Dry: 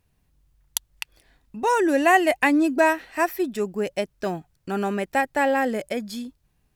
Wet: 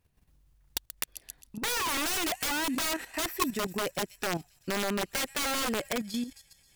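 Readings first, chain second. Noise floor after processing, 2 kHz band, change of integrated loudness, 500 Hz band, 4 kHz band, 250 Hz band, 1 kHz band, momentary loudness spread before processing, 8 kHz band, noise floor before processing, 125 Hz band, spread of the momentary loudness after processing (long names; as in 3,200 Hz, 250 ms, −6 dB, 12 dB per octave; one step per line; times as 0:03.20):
−67 dBFS, −8.5 dB, −8.0 dB, −12.5 dB, +4.5 dB, −10.5 dB, −11.0 dB, 17 LU, +3.0 dB, −69 dBFS, −4.0 dB, 9 LU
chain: delay with a high-pass on its return 133 ms, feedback 74%, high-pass 5,400 Hz, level −10 dB
wrap-around overflow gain 19 dB
output level in coarse steps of 11 dB
level +3 dB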